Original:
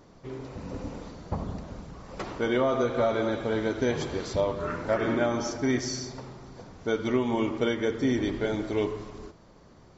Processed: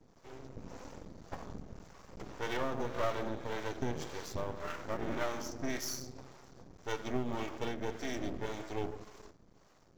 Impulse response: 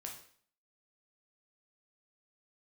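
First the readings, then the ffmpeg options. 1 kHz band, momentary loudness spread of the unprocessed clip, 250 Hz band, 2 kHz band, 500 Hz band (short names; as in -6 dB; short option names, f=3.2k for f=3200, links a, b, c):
-7.0 dB, 17 LU, -12.5 dB, -8.5 dB, -12.0 dB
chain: -filter_complex "[0:a]acrossover=split=440[a][b];[a]aeval=exprs='val(0)*(1-0.7/2+0.7/2*cos(2*PI*1.8*n/s))':c=same[c];[b]aeval=exprs='val(0)*(1-0.7/2-0.7/2*cos(2*PI*1.8*n/s))':c=same[d];[c][d]amix=inputs=2:normalize=0,aeval=exprs='max(val(0),0)':c=same,aexciter=amount=1.9:drive=1.6:freq=5.5k,volume=-2.5dB"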